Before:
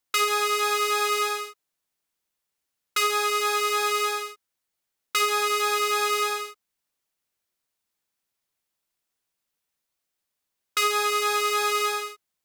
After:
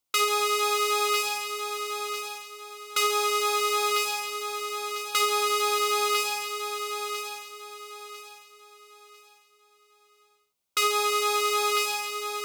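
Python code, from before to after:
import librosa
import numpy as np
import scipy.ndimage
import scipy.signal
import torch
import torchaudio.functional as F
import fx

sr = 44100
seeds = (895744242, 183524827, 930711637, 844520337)

p1 = fx.peak_eq(x, sr, hz=1700.0, db=-13.0, octaves=0.27)
y = p1 + fx.echo_feedback(p1, sr, ms=998, feedback_pct=32, wet_db=-7.0, dry=0)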